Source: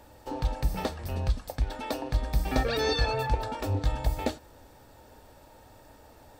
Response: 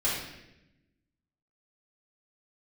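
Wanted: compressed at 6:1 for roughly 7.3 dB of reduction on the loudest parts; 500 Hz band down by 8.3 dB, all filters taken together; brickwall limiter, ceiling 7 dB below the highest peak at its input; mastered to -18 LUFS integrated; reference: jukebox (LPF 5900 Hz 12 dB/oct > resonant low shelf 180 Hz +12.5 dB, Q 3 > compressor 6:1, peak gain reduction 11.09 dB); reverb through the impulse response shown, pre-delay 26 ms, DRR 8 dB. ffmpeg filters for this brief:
-filter_complex "[0:a]equalizer=f=500:t=o:g=-7.5,acompressor=threshold=-28dB:ratio=6,alimiter=level_in=1dB:limit=-24dB:level=0:latency=1,volume=-1dB,asplit=2[a][b];[1:a]atrim=start_sample=2205,adelay=26[c];[b][c]afir=irnorm=-1:irlink=0,volume=-17.5dB[d];[a][d]amix=inputs=2:normalize=0,lowpass=5.9k,lowshelf=f=180:t=q:w=3:g=12.5,acompressor=threshold=-23dB:ratio=6,volume=12dB"

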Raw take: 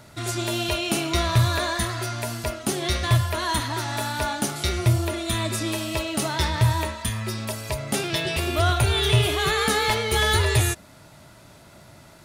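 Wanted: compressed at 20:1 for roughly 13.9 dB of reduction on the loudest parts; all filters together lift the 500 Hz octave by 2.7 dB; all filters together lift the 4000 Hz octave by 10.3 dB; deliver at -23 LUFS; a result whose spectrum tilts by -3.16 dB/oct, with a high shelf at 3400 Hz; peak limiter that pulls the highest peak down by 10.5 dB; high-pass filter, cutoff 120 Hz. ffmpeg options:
-af "highpass=120,equalizer=f=500:t=o:g=3.5,highshelf=f=3.4k:g=8,equalizer=f=4k:t=o:g=7,acompressor=threshold=-26dB:ratio=20,volume=6.5dB,alimiter=limit=-14dB:level=0:latency=1"

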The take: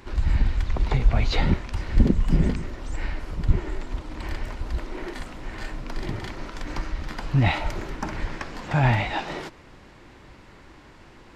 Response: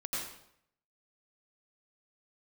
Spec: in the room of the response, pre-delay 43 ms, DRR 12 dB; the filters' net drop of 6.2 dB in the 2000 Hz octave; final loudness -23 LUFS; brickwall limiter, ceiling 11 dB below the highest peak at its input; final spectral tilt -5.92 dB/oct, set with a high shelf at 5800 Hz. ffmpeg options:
-filter_complex "[0:a]equalizer=f=2k:t=o:g=-8,highshelf=f=5.8k:g=4,alimiter=limit=-15dB:level=0:latency=1,asplit=2[a][b];[1:a]atrim=start_sample=2205,adelay=43[c];[b][c]afir=irnorm=-1:irlink=0,volume=-15dB[d];[a][d]amix=inputs=2:normalize=0,volume=7dB"

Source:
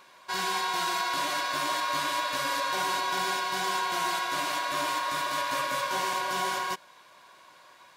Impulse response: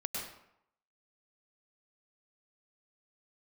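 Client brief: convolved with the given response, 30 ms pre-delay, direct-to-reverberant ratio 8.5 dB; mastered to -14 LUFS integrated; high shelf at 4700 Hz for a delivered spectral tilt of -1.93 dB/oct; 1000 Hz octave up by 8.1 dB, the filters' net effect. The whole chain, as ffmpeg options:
-filter_complex "[0:a]equalizer=f=1k:t=o:g=8.5,highshelf=f=4.7k:g=4,asplit=2[a][b];[1:a]atrim=start_sample=2205,adelay=30[c];[b][c]afir=irnorm=-1:irlink=0,volume=-11dB[d];[a][d]amix=inputs=2:normalize=0,volume=8.5dB"

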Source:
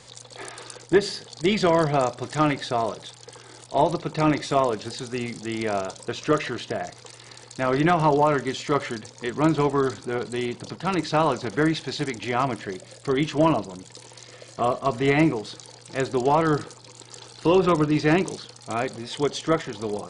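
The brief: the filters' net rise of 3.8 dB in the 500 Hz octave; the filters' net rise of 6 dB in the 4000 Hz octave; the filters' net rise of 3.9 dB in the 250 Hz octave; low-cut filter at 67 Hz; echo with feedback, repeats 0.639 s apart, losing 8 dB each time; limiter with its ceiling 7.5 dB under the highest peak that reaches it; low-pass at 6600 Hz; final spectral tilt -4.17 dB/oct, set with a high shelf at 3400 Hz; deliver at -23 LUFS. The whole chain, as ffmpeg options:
-af "highpass=67,lowpass=6.6k,equalizer=f=250:t=o:g=4,equalizer=f=500:t=o:g=3.5,highshelf=f=3.4k:g=6.5,equalizer=f=4k:t=o:g=3.5,alimiter=limit=-10.5dB:level=0:latency=1,aecho=1:1:639|1278|1917|2556|3195:0.398|0.159|0.0637|0.0255|0.0102"

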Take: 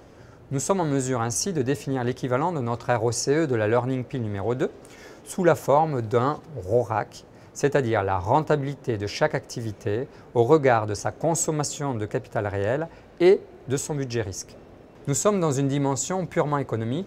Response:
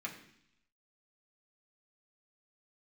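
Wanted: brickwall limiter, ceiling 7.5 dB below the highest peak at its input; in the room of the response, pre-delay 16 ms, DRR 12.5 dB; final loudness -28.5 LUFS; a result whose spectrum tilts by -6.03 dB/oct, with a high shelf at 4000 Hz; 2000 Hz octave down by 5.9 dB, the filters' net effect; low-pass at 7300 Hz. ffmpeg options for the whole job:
-filter_complex "[0:a]lowpass=7.3k,equalizer=f=2k:t=o:g=-7,highshelf=f=4k:g=-5.5,alimiter=limit=-12.5dB:level=0:latency=1,asplit=2[a][b];[1:a]atrim=start_sample=2205,adelay=16[c];[b][c]afir=irnorm=-1:irlink=0,volume=-13dB[d];[a][d]amix=inputs=2:normalize=0,volume=-2dB"

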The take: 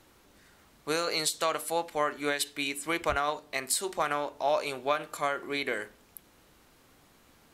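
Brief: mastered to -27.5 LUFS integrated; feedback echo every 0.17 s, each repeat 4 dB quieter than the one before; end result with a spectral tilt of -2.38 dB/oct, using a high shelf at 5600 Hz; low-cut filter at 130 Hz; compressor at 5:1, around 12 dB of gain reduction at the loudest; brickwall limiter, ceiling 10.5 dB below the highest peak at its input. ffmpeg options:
-af "highpass=130,highshelf=f=5.6k:g=8,acompressor=threshold=-33dB:ratio=5,alimiter=level_in=2.5dB:limit=-24dB:level=0:latency=1,volume=-2.5dB,aecho=1:1:170|340|510|680|850|1020|1190|1360|1530:0.631|0.398|0.25|0.158|0.0994|0.0626|0.0394|0.0249|0.0157,volume=9.5dB"

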